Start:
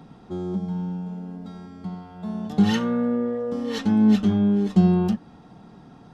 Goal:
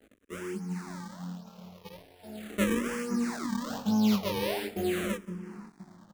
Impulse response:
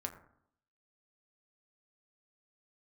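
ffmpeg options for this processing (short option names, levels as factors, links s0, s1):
-filter_complex "[0:a]equalizer=f=120:t=o:w=0.69:g=-7.5,acrusher=samples=36:mix=1:aa=0.000001:lfo=1:lforange=57.6:lforate=1.2,asplit=2[s0][s1];[s1]adelay=514,lowpass=f=1100:p=1,volume=0.211,asplit=2[s2][s3];[s3]adelay=514,lowpass=f=1100:p=1,volume=0.41,asplit=2[s4][s5];[s5]adelay=514,lowpass=f=1100:p=1,volume=0.41,asplit=2[s6][s7];[s7]adelay=514,lowpass=f=1100:p=1,volume=0.41[s8];[s2][s4][s6][s8]amix=inputs=4:normalize=0[s9];[s0][s9]amix=inputs=2:normalize=0,flanger=delay=18.5:depth=5.9:speed=1,asplit=2[s10][s11];[s11]aecho=0:1:176:0.0841[s12];[s10][s12]amix=inputs=2:normalize=0,aeval=exprs='sgn(val(0))*max(abs(val(0))-0.00299,0)':c=same,lowshelf=f=84:g=-8,asplit=2[s13][s14];[s14]afreqshift=-0.41[s15];[s13][s15]amix=inputs=2:normalize=1"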